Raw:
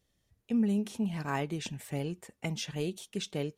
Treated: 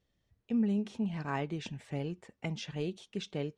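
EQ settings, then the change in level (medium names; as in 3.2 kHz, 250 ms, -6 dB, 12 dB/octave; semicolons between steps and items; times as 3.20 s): distance through air 110 m; -1.5 dB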